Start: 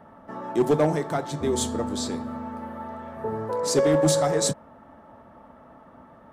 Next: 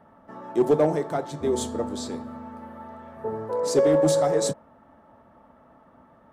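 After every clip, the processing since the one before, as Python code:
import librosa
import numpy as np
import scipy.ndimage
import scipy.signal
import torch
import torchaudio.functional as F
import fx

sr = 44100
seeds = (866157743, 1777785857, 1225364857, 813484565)

y = fx.dynamic_eq(x, sr, hz=480.0, q=0.72, threshold_db=-33.0, ratio=4.0, max_db=7)
y = F.gain(torch.from_numpy(y), -5.0).numpy()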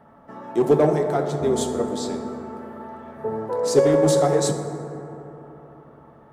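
y = fx.rev_fdn(x, sr, rt60_s=3.7, lf_ratio=1.0, hf_ratio=0.3, size_ms=42.0, drr_db=5.0)
y = F.gain(torch.from_numpy(y), 2.5).numpy()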